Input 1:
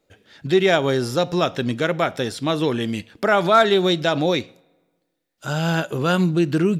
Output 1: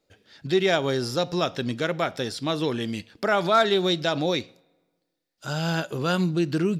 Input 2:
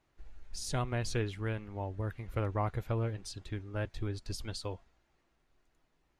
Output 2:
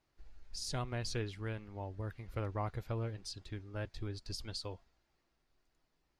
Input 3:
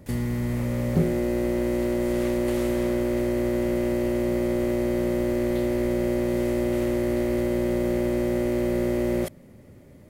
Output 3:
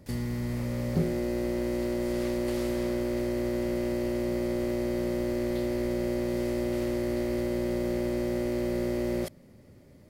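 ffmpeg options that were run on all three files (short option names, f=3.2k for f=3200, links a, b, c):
-af "equalizer=f=4.8k:t=o:w=0.56:g=7,volume=-5dB"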